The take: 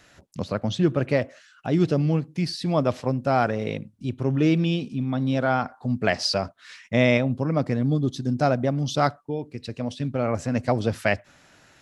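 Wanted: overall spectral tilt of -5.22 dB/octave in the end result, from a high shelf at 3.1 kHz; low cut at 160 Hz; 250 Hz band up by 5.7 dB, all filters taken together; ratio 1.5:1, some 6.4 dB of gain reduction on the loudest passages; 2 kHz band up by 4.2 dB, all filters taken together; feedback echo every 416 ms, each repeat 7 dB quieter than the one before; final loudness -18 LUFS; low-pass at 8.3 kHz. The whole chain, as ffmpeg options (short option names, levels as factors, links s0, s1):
-af "highpass=160,lowpass=8300,equalizer=f=250:t=o:g=8,equalizer=f=2000:t=o:g=4,highshelf=f=3100:g=3,acompressor=threshold=0.0355:ratio=1.5,aecho=1:1:416|832|1248|1664|2080:0.447|0.201|0.0905|0.0407|0.0183,volume=2.37"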